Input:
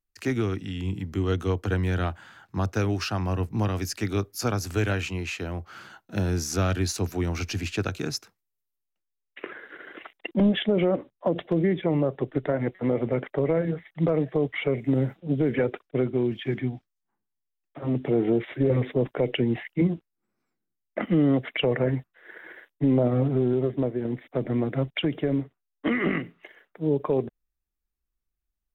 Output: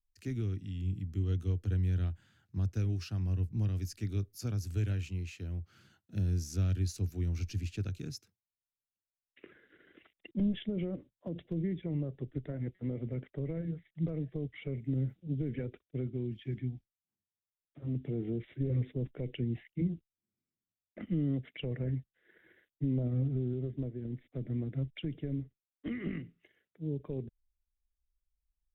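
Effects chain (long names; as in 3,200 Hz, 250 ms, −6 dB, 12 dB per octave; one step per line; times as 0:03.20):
guitar amp tone stack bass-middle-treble 10-0-1
level +7 dB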